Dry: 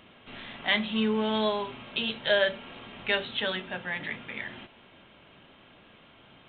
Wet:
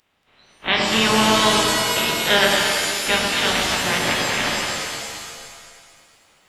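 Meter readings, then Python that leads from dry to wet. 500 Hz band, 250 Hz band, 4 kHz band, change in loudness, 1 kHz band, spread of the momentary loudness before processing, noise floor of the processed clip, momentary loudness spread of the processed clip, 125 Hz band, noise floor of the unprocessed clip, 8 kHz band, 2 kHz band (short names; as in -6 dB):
+7.0 dB, +7.5 dB, +13.0 dB, +11.0 dB, +15.0 dB, 17 LU, -59 dBFS, 14 LU, +12.5 dB, -56 dBFS, n/a, +11.0 dB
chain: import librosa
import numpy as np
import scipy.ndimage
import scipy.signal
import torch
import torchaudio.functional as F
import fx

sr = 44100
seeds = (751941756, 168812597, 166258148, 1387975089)

p1 = fx.spec_clip(x, sr, under_db=18)
p2 = fx.peak_eq(p1, sr, hz=3400.0, db=-4.0, octaves=0.22)
p3 = fx.rider(p2, sr, range_db=5, speed_s=2.0)
p4 = fx.noise_reduce_blind(p3, sr, reduce_db=20)
p5 = p4 + fx.echo_alternate(p4, sr, ms=116, hz=1100.0, feedback_pct=69, wet_db=-3.0, dry=0)
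p6 = fx.rev_shimmer(p5, sr, seeds[0], rt60_s=1.6, semitones=7, shimmer_db=-2, drr_db=3.0)
y = F.gain(torch.from_numpy(p6), 7.5).numpy()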